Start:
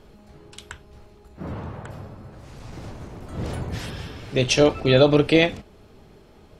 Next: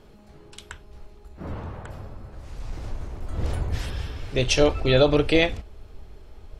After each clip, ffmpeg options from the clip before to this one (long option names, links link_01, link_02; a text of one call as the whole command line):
ffmpeg -i in.wav -af "asubboost=boost=9:cutoff=57,volume=-1.5dB" out.wav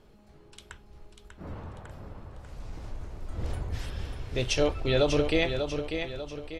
ffmpeg -i in.wav -af "aecho=1:1:593|1186|1779|2372|2965:0.447|0.197|0.0865|0.0381|0.0167,volume=-6.5dB" out.wav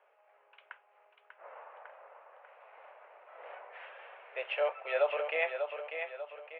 ffmpeg -i in.wav -af "asuperpass=centerf=1200:order=12:qfactor=0.55,volume=-1dB" out.wav